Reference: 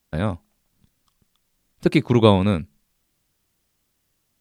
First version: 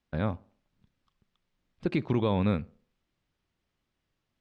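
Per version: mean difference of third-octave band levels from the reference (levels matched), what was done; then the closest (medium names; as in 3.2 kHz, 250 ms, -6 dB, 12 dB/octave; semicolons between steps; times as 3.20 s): 3.5 dB: peak limiter -10.5 dBFS, peak gain reduction 9 dB; low-pass 3.5 kHz 12 dB/octave; tape echo 65 ms, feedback 46%, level -21 dB, low-pass 1.4 kHz; trim -6 dB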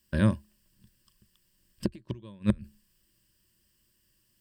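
11.5 dB: peaking EQ 760 Hz -13.5 dB 0.96 oct; inverted gate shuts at -11 dBFS, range -33 dB; rippled EQ curve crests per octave 1.3, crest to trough 10 dB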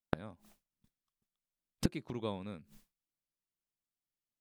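5.0 dB: expander -45 dBFS; peaking EQ 67 Hz -9.5 dB 1.1 oct; inverted gate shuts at -20 dBFS, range -30 dB; trim +6.5 dB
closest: first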